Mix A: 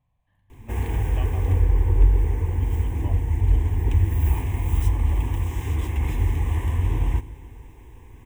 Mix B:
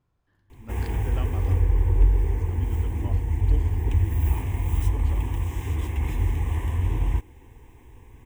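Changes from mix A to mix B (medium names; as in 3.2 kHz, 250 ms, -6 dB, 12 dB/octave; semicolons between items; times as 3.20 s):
speech: remove static phaser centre 1.4 kHz, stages 6; reverb: off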